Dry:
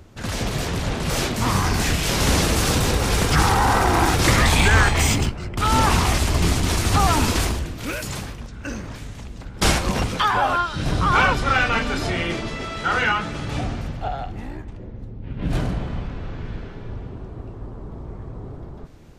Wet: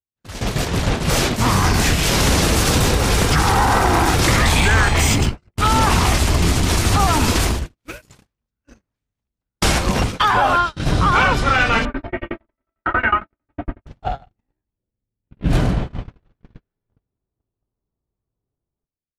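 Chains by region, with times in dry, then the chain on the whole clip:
0:11.85–0:13.87: low-pass filter 2,200 Hz 24 dB per octave + comb filter 3.2 ms, depth 72% + shaped tremolo saw down 11 Hz, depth 95%
whole clip: noise gate −24 dBFS, range −55 dB; automatic gain control gain up to 7 dB; brickwall limiter −6 dBFS

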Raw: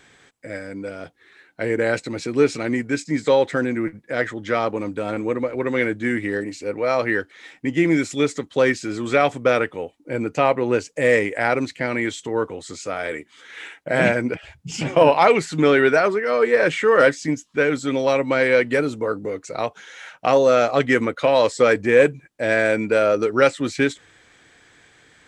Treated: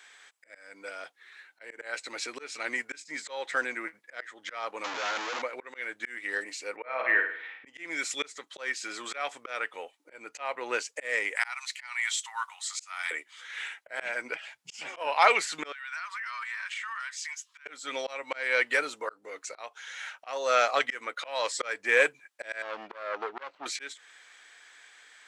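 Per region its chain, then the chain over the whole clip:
0:04.84–0:05.42: sign of each sample alone + low-pass filter 2,900 Hz 6 dB per octave + bad sample-rate conversion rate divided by 3×, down none, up filtered
0:06.76–0:07.67: low-pass filter 2,800 Hz 24 dB per octave + flutter between parallel walls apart 9.1 metres, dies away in 0.57 s
0:11.36–0:13.11: Butterworth high-pass 840 Hz 48 dB per octave + high-shelf EQ 5,200 Hz +7.5 dB + notch filter 1,600 Hz, Q 14
0:15.72–0:17.66: elliptic high-pass filter 990 Hz, stop band 80 dB + downward compressor 10 to 1, threshold −32 dBFS
0:22.62–0:23.66: running median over 25 samples + high-frequency loss of the air 210 metres + saturating transformer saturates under 1,100 Hz
whole clip: high-pass filter 990 Hz 12 dB per octave; volume swells 313 ms

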